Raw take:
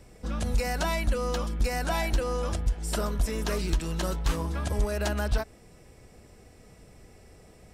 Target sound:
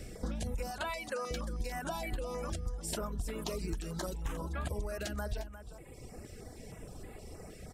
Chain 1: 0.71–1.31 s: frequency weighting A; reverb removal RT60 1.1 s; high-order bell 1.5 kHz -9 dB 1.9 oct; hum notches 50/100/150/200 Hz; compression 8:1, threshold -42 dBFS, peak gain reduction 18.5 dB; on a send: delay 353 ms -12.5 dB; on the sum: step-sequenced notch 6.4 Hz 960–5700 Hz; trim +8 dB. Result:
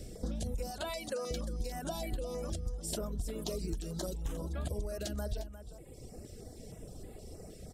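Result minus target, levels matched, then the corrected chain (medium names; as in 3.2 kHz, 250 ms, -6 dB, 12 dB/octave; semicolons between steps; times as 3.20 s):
2 kHz band -7.0 dB
0.71–1.31 s: frequency weighting A; reverb removal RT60 1.1 s; hum notches 50/100/150/200 Hz; compression 8:1, threshold -42 dBFS, peak gain reduction 18.5 dB; on a send: delay 353 ms -12.5 dB; on the sum: step-sequenced notch 6.4 Hz 960–5700 Hz; trim +8 dB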